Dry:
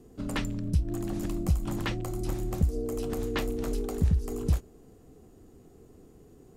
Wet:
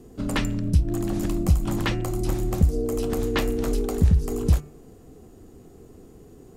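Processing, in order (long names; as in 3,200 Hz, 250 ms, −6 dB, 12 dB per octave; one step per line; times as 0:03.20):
hum removal 148 Hz, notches 19
level +6.5 dB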